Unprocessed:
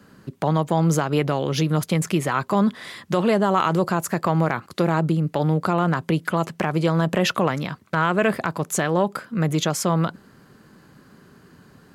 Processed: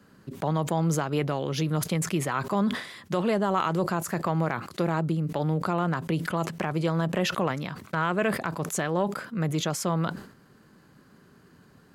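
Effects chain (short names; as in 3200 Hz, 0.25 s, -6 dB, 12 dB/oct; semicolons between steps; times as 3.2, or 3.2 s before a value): sustainer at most 100 dB/s; gain -6 dB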